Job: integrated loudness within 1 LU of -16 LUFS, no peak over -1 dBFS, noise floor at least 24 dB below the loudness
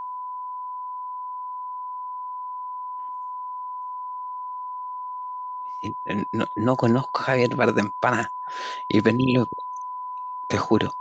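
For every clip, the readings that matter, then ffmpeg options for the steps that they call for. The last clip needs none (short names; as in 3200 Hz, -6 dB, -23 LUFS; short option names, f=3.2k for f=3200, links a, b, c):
steady tone 1000 Hz; tone level -30 dBFS; loudness -26.5 LUFS; peak -4.5 dBFS; loudness target -16.0 LUFS
-> -af "bandreject=f=1k:w=30"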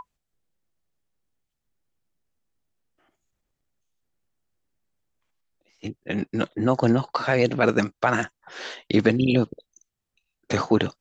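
steady tone none; loudness -23.5 LUFS; peak -4.5 dBFS; loudness target -16.0 LUFS
-> -af "volume=7.5dB,alimiter=limit=-1dB:level=0:latency=1"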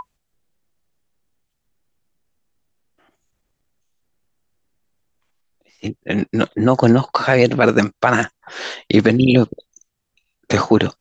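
loudness -16.5 LUFS; peak -1.0 dBFS; noise floor -75 dBFS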